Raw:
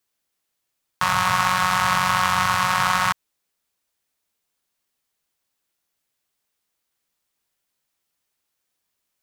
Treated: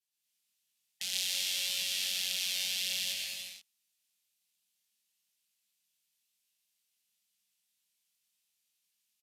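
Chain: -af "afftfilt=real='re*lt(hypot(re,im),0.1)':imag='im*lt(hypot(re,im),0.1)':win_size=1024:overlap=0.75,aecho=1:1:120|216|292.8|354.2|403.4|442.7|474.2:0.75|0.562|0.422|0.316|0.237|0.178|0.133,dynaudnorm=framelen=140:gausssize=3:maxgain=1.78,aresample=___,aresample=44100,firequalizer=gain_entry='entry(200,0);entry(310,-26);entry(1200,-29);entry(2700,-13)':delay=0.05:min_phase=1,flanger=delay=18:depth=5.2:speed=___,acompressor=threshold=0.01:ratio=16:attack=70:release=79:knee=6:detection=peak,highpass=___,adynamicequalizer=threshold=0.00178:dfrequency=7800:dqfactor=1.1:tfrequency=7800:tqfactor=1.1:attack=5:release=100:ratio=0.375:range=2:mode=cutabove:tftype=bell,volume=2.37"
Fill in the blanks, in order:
32000, 0.57, 610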